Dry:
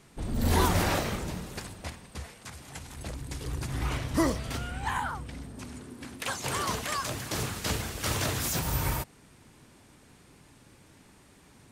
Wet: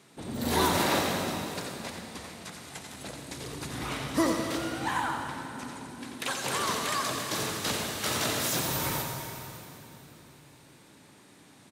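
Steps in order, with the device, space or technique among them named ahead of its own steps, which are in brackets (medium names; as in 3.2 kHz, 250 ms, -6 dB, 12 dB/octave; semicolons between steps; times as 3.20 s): PA in a hall (high-pass 170 Hz 12 dB/octave; peaking EQ 3.8 kHz +5 dB 0.21 oct; delay 88 ms -7.5 dB; reverberation RT60 3.4 s, pre-delay 90 ms, DRR 4.5 dB)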